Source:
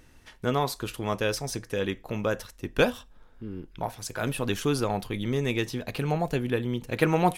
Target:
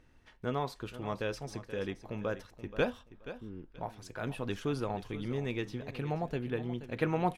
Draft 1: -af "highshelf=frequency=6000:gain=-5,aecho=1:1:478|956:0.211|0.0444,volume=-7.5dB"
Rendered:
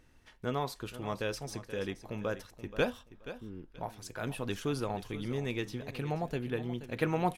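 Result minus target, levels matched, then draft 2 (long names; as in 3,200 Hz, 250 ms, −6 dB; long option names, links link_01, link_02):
8,000 Hz band +6.0 dB
-af "highshelf=frequency=6000:gain=-15.5,aecho=1:1:478|956:0.211|0.0444,volume=-7.5dB"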